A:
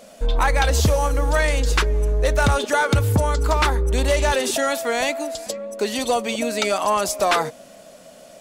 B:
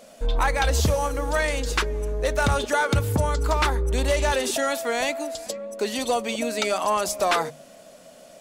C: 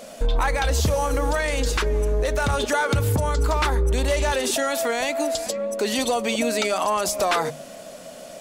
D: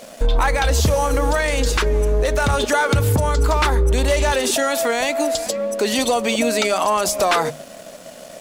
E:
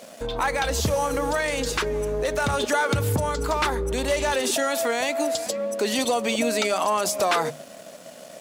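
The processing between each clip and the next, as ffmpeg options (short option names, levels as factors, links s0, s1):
-af "bandreject=f=50:t=h:w=6,bandreject=f=100:t=h:w=6,bandreject=f=150:t=h:w=6,bandreject=f=200:t=h:w=6,volume=0.708"
-af "alimiter=limit=0.0794:level=0:latency=1:release=99,volume=2.51"
-af "aeval=exprs='sgn(val(0))*max(abs(val(0))-0.00422,0)':c=same,volume=1.68"
-af "highpass=97,volume=0.596"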